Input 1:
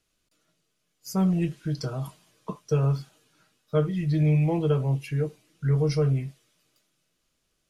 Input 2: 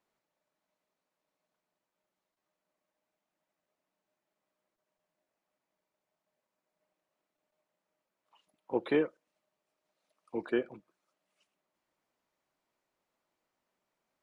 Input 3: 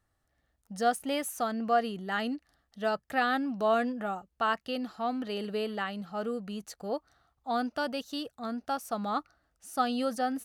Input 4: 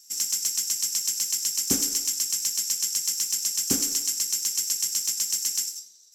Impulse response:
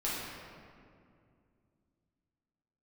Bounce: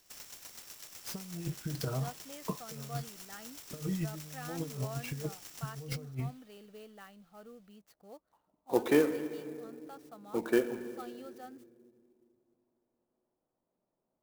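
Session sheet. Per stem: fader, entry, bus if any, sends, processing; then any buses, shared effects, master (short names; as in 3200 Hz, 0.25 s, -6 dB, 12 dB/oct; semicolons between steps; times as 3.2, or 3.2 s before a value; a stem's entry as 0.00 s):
-8.0 dB, 0.00 s, no send, negative-ratio compressor -29 dBFS, ratio -0.5
+1.5 dB, 0.00 s, send -13 dB, low-pass opened by the level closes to 620 Hz, open at -35 dBFS
-18.5 dB, 1.20 s, no send, dry
-13.0 dB, 0.00 s, no send, compressor 4:1, threshold -34 dBFS, peak gain reduction 13.5 dB; auto duck -24 dB, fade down 0.40 s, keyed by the second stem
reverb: on, RT60 2.3 s, pre-delay 6 ms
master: clock jitter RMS 0.029 ms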